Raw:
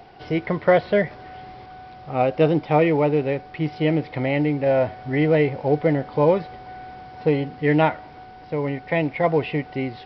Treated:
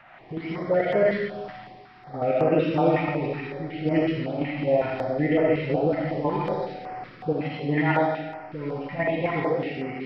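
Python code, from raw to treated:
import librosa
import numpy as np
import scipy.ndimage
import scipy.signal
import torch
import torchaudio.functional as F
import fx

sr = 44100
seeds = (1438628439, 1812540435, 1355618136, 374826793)

y = fx.spec_delay(x, sr, highs='late', ms=363)
y = fx.dmg_noise_band(y, sr, seeds[0], low_hz=320.0, high_hz=2200.0, level_db=-49.0)
y = fx.level_steps(y, sr, step_db=10)
y = fx.low_shelf(y, sr, hz=120.0, db=-9.0)
y = fx.rev_freeverb(y, sr, rt60_s=1.2, hf_ratio=0.9, predelay_ms=20, drr_db=-2.0)
y = fx.filter_held_notch(y, sr, hz=5.4, low_hz=410.0, high_hz=3700.0)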